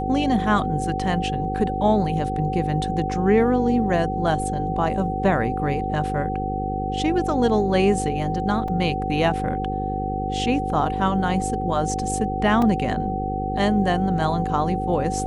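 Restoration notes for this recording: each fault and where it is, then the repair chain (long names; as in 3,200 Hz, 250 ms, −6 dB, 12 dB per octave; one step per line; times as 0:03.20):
mains buzz 50 Hz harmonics 10 −28 dBFS
whistle 760 Hz −26 dBFS
0:08.68: drop-out 3.4 ms
0:12.62: drop-out 2.9 ms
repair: hum removal 50 Hz, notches 10
notch filter 760 Hz, Q 30
repair the gap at 0:08.68, 3.4 ms
repair the gap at 0:12.62, 2.9 ms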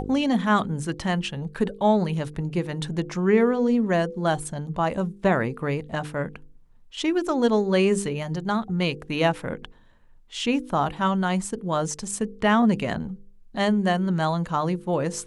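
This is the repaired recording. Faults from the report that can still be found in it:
none of them is left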